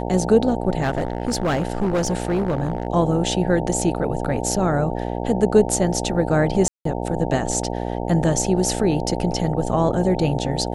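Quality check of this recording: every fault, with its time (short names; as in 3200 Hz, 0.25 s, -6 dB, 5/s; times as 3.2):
buzz 60 Hz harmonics 15 -26 dBFS
0.81–2.87 clipped -16.5 dBFS
6.68–6.85 gap 0.173 s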